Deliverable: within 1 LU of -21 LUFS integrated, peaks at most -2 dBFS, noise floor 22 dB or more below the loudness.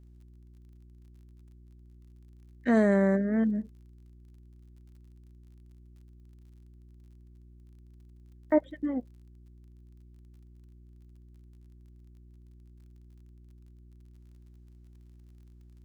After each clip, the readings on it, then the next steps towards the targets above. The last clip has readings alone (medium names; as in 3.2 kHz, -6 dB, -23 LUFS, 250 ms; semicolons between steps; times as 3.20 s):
tick rate 31 per s; hum 60 Hz; highest harmonic 360 Hz; hum level -51 dBFS; loudness -27.0 LUFS; peak level -12.5 dBFS; loudness target -21.0 LUFS
-> de-click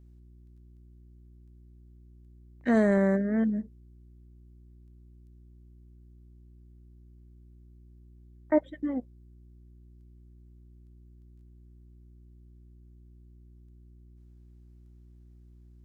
tick rate 0 per s; hum 60 Hz; highest harmonic 360 Hz; hum level -51 dBFS
-> de-hum 60 Hz, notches 6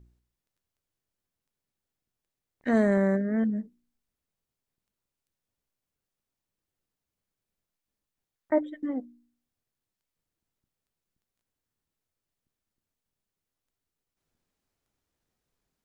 hum not found; loudness -27.5 LUFS; peak level -12.5 dBFS; loudness target -21.0 LUFS
-> trim +6.5 dB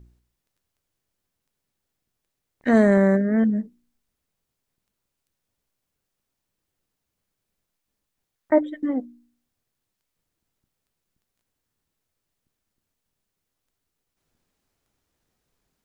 loudness -21.0 LUFS; peak level -6.0 dBFS; noise floor -82 dBFS